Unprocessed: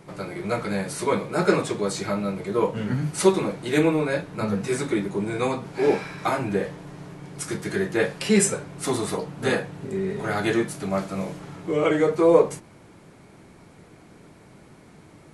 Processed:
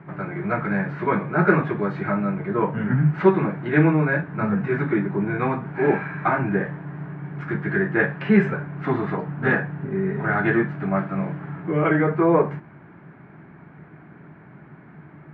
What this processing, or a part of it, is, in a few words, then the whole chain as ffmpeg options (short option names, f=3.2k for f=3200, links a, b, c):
bass cabinet: -af "highpass=81,equalizer=f=98:t=q:w=4:g=-4,equalizer=f=150:t=q:w=4:g=8,equalizer=f=500:t=q:w=4:g=-9,equalizer=f=1.6k:t=q:w=4:g=7,lowpass=f=2.1k:w=0.5412,lowpass=f=2.1k:w=1.3066,volume=3dB"